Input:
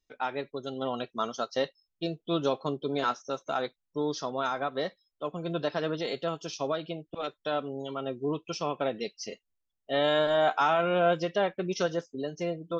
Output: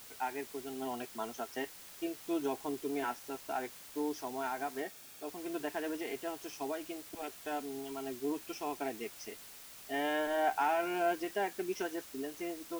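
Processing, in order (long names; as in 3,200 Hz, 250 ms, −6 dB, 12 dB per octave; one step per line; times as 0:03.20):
phaser with its sweep stopped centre 810 Hz, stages 8
background noise white −49 dBFS
0:04.82–0:05.28: notch comb filter 1,000 Hz
level −3 dB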